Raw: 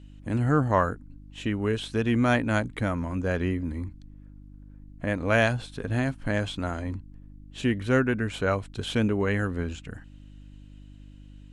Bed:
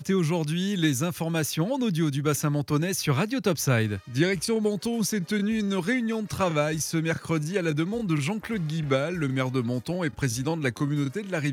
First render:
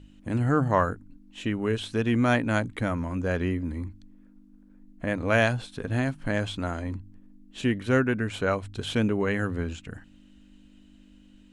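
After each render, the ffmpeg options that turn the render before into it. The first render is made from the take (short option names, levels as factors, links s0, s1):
-af "bandreject=f=50:t=h:w=4,bandreject=f=100:t=h:w=4,bandreject=f=150:t=h:w=4"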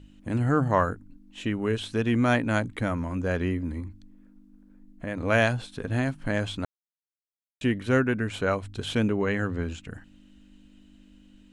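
-filter_complex "[0:a]asettb=1/sr,asplit=3[s0][s1][s2];[s0]atrim=end=3.804[s3];[s1]atrim=start=3.8:end=5.17,asetpts=PTS-STARTPTS,afade=t=in:d=0.004:c=qsin,afade=t=out:st=1.366:d=0.004:c=qsin,acompressor=threshold=0.0178:ratio=1.5:attack=3.2:release=140:knee=1:detection=peak[s4];[s2]atrim=start=5.166[s5];[s3][s4]acrossfade=d=0.004:c1=hsin:c2=qsin[s6];[s6][s5]acrossfade=d=0.004:c1=qsin:c2=hsin,asettb=1/sr,asplit=3[s7][s8][s9];[s7]atrim=end=9.124[s10];[s8]atrim=start=9.12:end=9.63,asetpts=PTS-STARTPTS,afade=t=in:d=0.004:c=qsin,afade=t=out:st=0.506:d=0.004:c=qsin,lowpass=f=8000:w=0.5412,lowpass=f=8000:w=1.3066[s11];[s9]atrim=start=9.626[s12];[s10][s11]acrossfade=d=0.004:c1=hsin:c2=qsin[s13];[s13][s12]acrossfade=d=0.004:c1=qsin:c2=hsin,asplit=3[s14][s15][s16];[s14]atrim=end=6.65,asetpts=PTS-STARTPTS,afade=t=out:st=6.646:d=0.004:c=hsin[s17];[s15]atrim=start=6.65:end=7.61,asetpts=PTS-STARTPTS,volume=0[s18];[s16]atrim=start=7.61,asetpts=PTS-STARTPTS,afade=t=in:d=0.004:c=hsin[s19];[s17][s18][s19]concat=n=3:v=0:a=1"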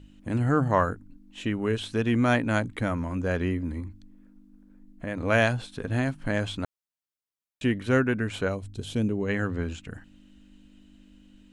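-filter_complex "[0:a]asplit=3[s0][s1][s2];[s0]afade=t=out:st=8.47:d=0.02[s3];[s1]equalizer=f=1500:t=o:w=2.4:g=-13,afade=t=in:st=8.47:d=0.02,afade=t=out:st=9.28:d=0.02[s4];[s2]afade=t=in:st=9.28:d=0.02[s5];[s3][s4][s5]amix=inputs=3:normalize=0"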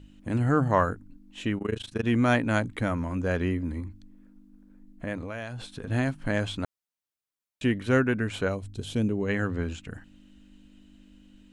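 -filter_complex "[0:a]asettb=1/sr,asplit=3[s0][s1][s2];[s0]atrim=end=1.584[s3];[s1]atrim=start=1.58:end=2.04,asetpts=PTS-STARTPTS,afade=t=in:d=0.004:c=qsin,afade=t=out:st=0.456:d=0.004:c=qsin,tremolo=f=26:d=0.947[s4];[s2]atrim=start=2.036[s5];[s3][s4]acrossfade=d=0.004:c1=hsin:c2=qsin[s6];[s6][s5]acrossfade=d=0.004:c1=qsin:c2=hsin,asettb=1/sr,asplit=3[s7][s8][s9];[s7]atrim=end=5.154[s10];[s8]atrim=start=5.15:end=5.87,asetpts=PTS-STARTPTS,afade=t=in:d=0.004:c=qsin,afade=t=out:st=0.716:d=0.004:c=qsin,acompressor=threshold=0.0282:ratio=16:attack=3.2:release=140:knee=1:detection=peak[s11];[s9]atrim=start=5.866[s12];[s10][s11]acrossfade=d=0.004:c1=hsin:c2=qsin[s13];[s13][s12]acrossfade=d=0.004:c1=qsin:c2=hsin"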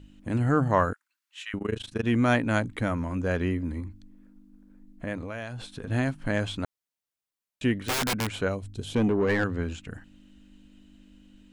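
-filter_complex "[0:a]asettb=1/sr,asplit=3[s0][s1][s2];[s0]atrim=end=0.934[s3];[s1]atrim=start=0.93:end=1.54,asetpts=PTS-STARTPTS,afade=t=in:d=0.004:c=qsin,afade=t=out:st=0.606:d=0.004:c=qsin,highpass=f=1300:w=0.5412,highpass=f=1300:w=1.3066[s4];[s2]atrim=start=1.536[s5];[s3][s4]acrossfade=d=0.004:c1=hsin:c2=qsin[s6];[s6][s5]acrossfade=d=0.004:c1=qsin:c2=hsin,asettb=1/sr,asplit=3[s7][s8][s9];[s7]atrim=end=7.814[s10];[s8]atrim=start=7.81:end=8.31,asetpts=PTS-STARTPTS,afade=t=in:d=0.004:c=qsin,afade=t=out:st=0.496:d=0.004:c=qsin,aeval=exprs='(mod(12.6*val(0)+1,2)-1)/12.6':c=same[s11];[s9]atrim=start=8.306[s12];[s10][s11]acrossfade=d=0.004:c1=hsin:c2=qsin[s13];[s13][s12]acrossfade=d=0.004:c1=qsin:c2=hsin,asettb=1/sr,asplit=3[s14][s15][s16];[s14]atrim=end=8.944[s17];[s15]atrim=start=8.94:end=9.44,asetpts=PTS-STARTPTS,afade=t=in:d=0.004:c=qsin,afade=t=out:st=0.496:d=0.004:c=qsin,asplit=2[s18][s19];[s19]highpass=f=720:p=1,volume=11.2,asoftclip=type=tanh:threshold=0.2[s20];[s18][s20]amix=inputs=2:normalize=0,lowpass=f=1300:p=1,volume=0.501[s21];[s16]atrim=start=9.436[s22];[s17][s21]acrossfade=d=0.004:c1=hsin:c2=qsin[s23];[s23][s22]acrossfade=d=0.004:c1=qsin:c2=hsin"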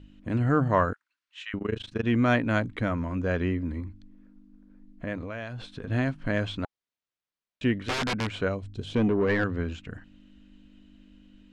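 -af "lowpass=4600,bandreject=f=830:w=12"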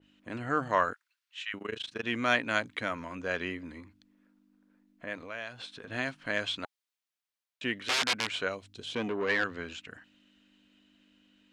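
-af "highpass=f=850:p=1,adynamicequalizer=threshold=0.00794:dfrequency=2100:dqfactor=0.7:tfrequency=2100:tqfactor=0.7:attack=5:release=100:ratio=0.375:range=3:mode=boostabove:tftype=highshelf"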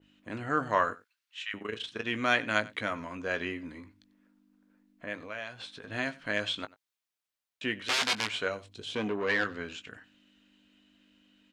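-filter_complex "[0:a]asplit=2[s0][s1];[s1]adelay=19,volume=0.282[s2];[s0][s2]amix=inputs=2:normalize=0,aecho=1:1:93:0.0891"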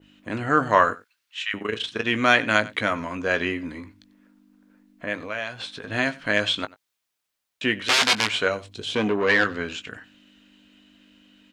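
-af "volume=2.82,alimiter=limit=0.794:level=0:latency=1"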